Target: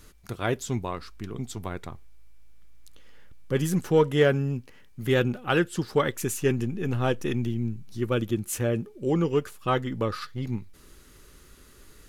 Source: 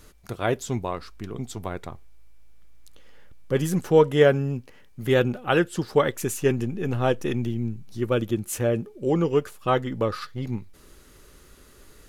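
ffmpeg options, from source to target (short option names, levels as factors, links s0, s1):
-filter_complex "[0:a]equalizer=f=620:w=1.2:g=-4.5,asplit=2[s0][s1];[s1]volume=6.68,asoftclip=hard,volume=0.15,volume=0.266[s2];[s0][s2]amix=inputs=2:normalize=0,volume=0.75"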